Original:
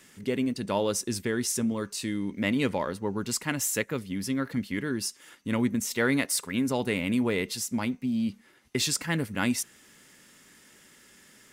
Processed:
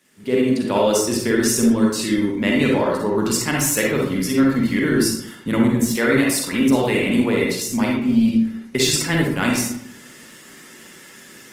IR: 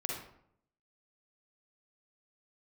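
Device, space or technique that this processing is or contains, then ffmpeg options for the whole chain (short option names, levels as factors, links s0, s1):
far-field microphone of a smart speaker: -filter_complex "[0:a]asettb=1/sr,asplit=3[s0][s1][s2];[s0]atrim=end=4.994[s3];[s1]atrim=start=4.99:end=5.95,asetpts=PTS-STARTPTS,afade=t=in:d=0.004:c=qsin,afade=t=out:st=0.956:d=0.004:c=qsin,equalizer=f=160:t=o:w=0.33:g=11,equalizer=f=2500:t=o:w=0.33:g=-5,equalizer=f=6300:t=o:w=0.33:g=-4[s4];[s2]atrim=start=5.946[s5];[s3][s4]acrossfade=d=0.004:c1=hsin:c2=qsin[s6];[s6][s5]acrossfade=d=0.004:c1=qsin:c2=hsin[s7];[1:a]atrim=start_sample=2205[s8];[s7][s8]afir=irnorm=-1:irlink=0,highpass=130,dynaudnorm=f=160:g=3:m=5.62,volume=0.631" -ar 48000 -c:a libopus -b:a 20k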